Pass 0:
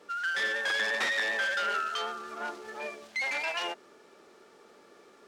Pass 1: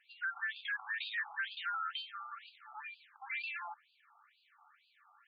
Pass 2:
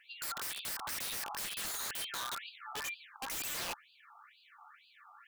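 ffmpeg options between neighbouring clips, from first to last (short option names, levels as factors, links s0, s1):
-af "acompressor=threshold=0.0158:ratio=1.5,afftfilt=real='re*between(b*sr/1024,970*pow(3500/970,0.5+0.5*sin(2*PI*2.1*pts/sr))/1.41,970*pow(3500/970,0.5+0.5*sin(2*PI*2.1*pts/sr))*1.41)':imag='im*between(b*sr/1024,970*pow(3500/970,0.5+0.5*sin(2*PI*2.1*pts/sr))/1.41,970*pow(3500/970,0.5+0.5*sin(2*PI*2.1*pts/sr))*1.41)':win_size=1024:overlap=0.75,volume=0.794"
-af "aeval=exprs='(mod(126*val(0)+1,2)-1)/126':c=same,volume=2.51"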